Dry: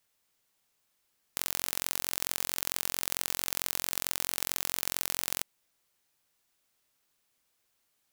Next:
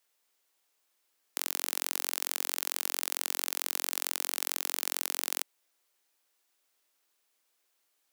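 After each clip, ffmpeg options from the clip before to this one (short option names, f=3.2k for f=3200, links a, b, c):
-af "highpass=f=290:w=0.5412,highpass=f=290:w=1.3066"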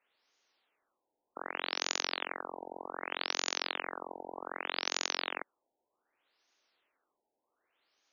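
-af "tremolo=f=280:d=0.261,afftfilt=real='re*lt(b*sr/1024,940*pow(6900/940,0.5+0.5*sin(2*PI*0.65*pts/sr)))':imag='im*lt(b*sr/1024,940*pow(6900/940,0.5+0.5*sin(2*PI*0.65*pts/sr)))':win_size=1024:overlap=0.75,volume=5.5dB"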